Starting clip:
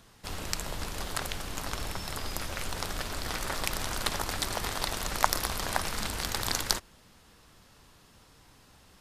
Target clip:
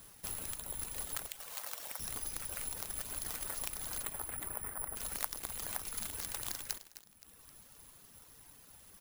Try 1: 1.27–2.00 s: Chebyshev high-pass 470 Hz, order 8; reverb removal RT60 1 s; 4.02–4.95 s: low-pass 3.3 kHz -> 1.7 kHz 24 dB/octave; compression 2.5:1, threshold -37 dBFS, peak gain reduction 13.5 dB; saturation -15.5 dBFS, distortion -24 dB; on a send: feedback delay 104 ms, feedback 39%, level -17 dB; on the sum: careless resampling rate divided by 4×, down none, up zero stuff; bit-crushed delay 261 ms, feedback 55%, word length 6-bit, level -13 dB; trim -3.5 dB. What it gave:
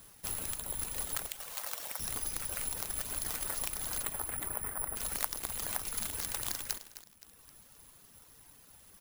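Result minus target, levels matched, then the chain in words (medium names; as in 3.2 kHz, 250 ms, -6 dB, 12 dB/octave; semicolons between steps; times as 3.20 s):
compression: peak gain reduction -4 dB
1.27–2.00 s: Chebyshev high-pass 470 Hz, order 8; reverb removal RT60 1 s; 4.02–4.95 s: low-pass 3.3 kHz -> 1.7 kHz 24 dB/octave; compression 2.5:1, threshold -43.5 dBFS, peak gain reduction 17.5 dB; saturation -15.5 dBFS, distortion -30 dB; on a send: feedback delay 104 ms, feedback 39%, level -17 dB; on the sum: careless resampling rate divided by 4×, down none, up zero stuff; bit-crushed delay 261 ms, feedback 55%, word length 6-bit, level -13 dB; trim -3.5 dB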